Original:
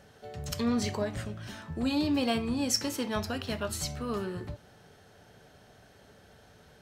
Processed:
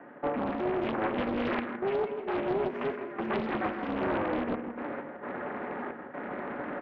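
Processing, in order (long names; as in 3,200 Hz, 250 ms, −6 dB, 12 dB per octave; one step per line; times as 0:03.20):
dynamic equaliser 570 Hz, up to −5 dB, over −42 dBFS, Q 0.79
reversed playback
downward compressor 6 to 1, threshold −44 dBFS, peak gain reduction 19.5 dB
reversed playback
sine wavefolder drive 15 dB, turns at −26.5 dBFS
gate pattern ".xxxxxx.x.xxx" 66 BPM −12 dB
ring modulation 210 Hz
single-tap delay 163 ms −8 dB
convolution reverb RT60 1.5 s, pre-delay 6 ms, DRR 8.5 dB
single-sideband voice off tune −80 Hz 300–2,100 Hz
highs frequency-modulated by the lows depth 0.79 ms
level +6 dB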